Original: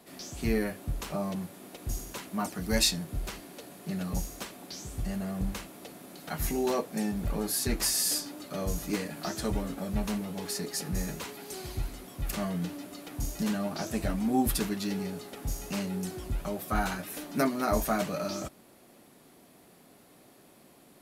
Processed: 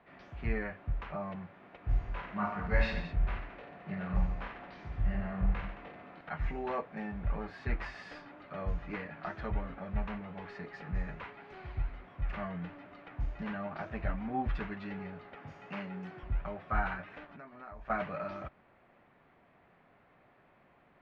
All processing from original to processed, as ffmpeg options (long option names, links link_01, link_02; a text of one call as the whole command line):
ffmpeg -i in.wav -filter_complex "[0:a]asettb=1/sr,asplit=3[link_01][link_02][link_03];[link_01]atrim=end=1.824[link_04];[link_02]atrim=start=1.82:end=6.21,asetpts=PTS-STARTPTS,afade=type=in:duration=0.004:curve=qsin,afade=type=out:start_time=4.386:duration=0.004:curve=qsin,highshelf=frequency=7100:gain=-6,aecho=1:1:20|48|87.2|142.1|218.9:0.794|0.631|0.501|0.398|0.316,atrim=end_sample=193599[link_05];[link_03]atrim=start=6.206[link_06];[link_04][link_05]acrossfade=duration=0.004:curve1=hsin:curve2=qsin[link_07];[link_07][link_06]acrossfade=duration=0.004:curve1=qsin:curve2=hsin,asettb=1/sr,asplit=3[link_08][link_09][link_10];[link_08]atrim=end=15.354[link_11];[link_09]atrim=start=15.35:end=16.23,asetpts=PTS-STARTPTS,afade=type=in:duration=0.004:curve=qsin,afade=type=out:start_time=0.876:duration=0.004:curve=qsin,highpass=frequency=130:width=0.5412,highpass=frequency=130:width=1.3066,highshelf=frequency=4500:gain=6,bandreject=frequency=3900:width=20[link_12];[link_10]atrim=start=16.226[link_13];[link_11][link_12]acrossfade=duration=0.004:curve1=hsin:curve2=qsin[link_14];[link_14][link_13]acrossfade=duration=0.004:curve1=qsin:curve2=hsin,asettb=1/sr,asplit=3[link_15][link_16][link_17];[link_15]atrim=end=17.254[link_18];[link_16]atrim=start=17.25:end=17.9,asetpts=PTS-STARTPTS,afade=type=in:duration=0.004:curve=qsin,afade=type=out:start_time=0.646:duration=0.004:curve=qsin,bandreject=frequency=2100:width=18,aeval=exprs='sgn(val(0))*max(abs(val(0))-0.00376,0)':channel_layout=same,acompressor=threshold=-39dB:ratio=20:attack=3.2:release=140:knee=1:detection=peak[link_19];[link_17]atrim=start=17.896[link_20];[link_18][link_19]acrossfade=duration=0.004:curve1=hsin:curve2=qsin[link_21];[link_21][link_20]acrossfade=duration=0.004:curve1=qsin:curve2=hsin,lowpass=frequency=2200:width=0.5412,lowpass=frequency=2200:width=1.3066,equalizer=frequency=290:width=0.65:gain=-13,volume=1dB" out.wav